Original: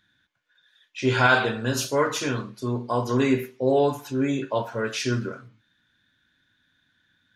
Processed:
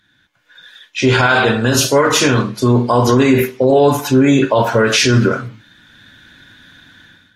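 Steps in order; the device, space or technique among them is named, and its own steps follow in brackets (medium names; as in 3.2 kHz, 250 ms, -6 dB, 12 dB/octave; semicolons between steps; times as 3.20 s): low-bitrate web radio (level rider gain up to 15.5 dB; peak limiter -11.5 dBFS, peak gain reduction 10.5 dB; trim +8 dB; AAC 48 kbps 48 kHz)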